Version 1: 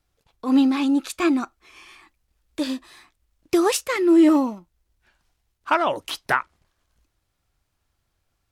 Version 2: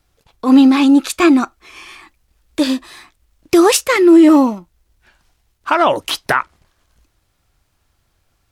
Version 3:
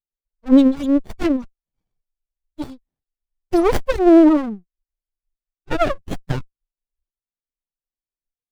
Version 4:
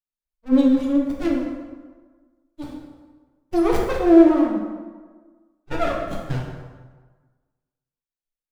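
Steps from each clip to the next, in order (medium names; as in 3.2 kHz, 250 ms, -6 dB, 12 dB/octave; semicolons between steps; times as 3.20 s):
loudness maximiser +11 dB; trim -1 dB
expander on every frequency bin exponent 3; sliding maximum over 33 samples; trim +1.5 dB
plate-style reverb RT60 1.4 s, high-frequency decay 0.65×, DRR -2.5 dB; trim -7.5 dB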